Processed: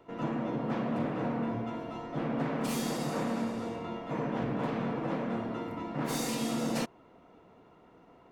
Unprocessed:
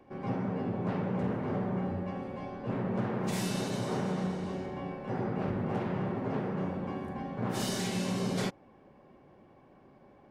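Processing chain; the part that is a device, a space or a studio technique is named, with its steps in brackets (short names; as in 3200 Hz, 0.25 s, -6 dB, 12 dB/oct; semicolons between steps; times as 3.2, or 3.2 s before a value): nightcore (varispeed +24%)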